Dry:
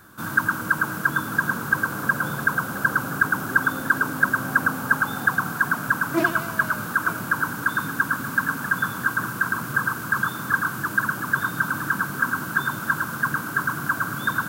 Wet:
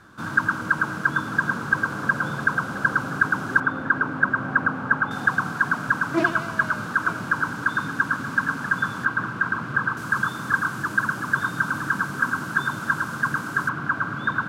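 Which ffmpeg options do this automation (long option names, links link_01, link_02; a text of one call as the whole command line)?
ffmpeg -i in.wav -af "asetnsamples=nb_out_samples=441:pad=0,asendcmd='3.6 lowpass f 2300;5.11 lowpass f 5900;9.05 lowpass f 3300;9.97 lowpass f 7700;13.69 lowpass f 3000',lowpass=5700" out.wav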